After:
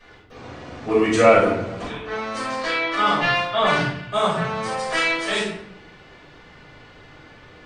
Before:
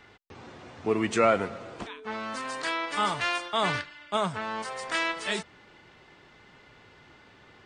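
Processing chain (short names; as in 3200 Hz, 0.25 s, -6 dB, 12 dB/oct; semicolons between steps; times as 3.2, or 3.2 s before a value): 2.4–3.65 LPF 6000 Hz -> 3700 Hz 12 dB/oct; shoebox room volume 160 m³, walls mixed, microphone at 5.5 m; gain -7 dB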